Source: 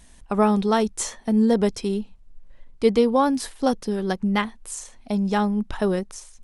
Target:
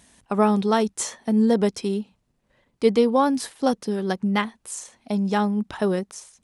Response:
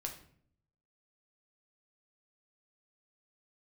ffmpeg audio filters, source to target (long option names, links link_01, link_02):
-af "highpass=110"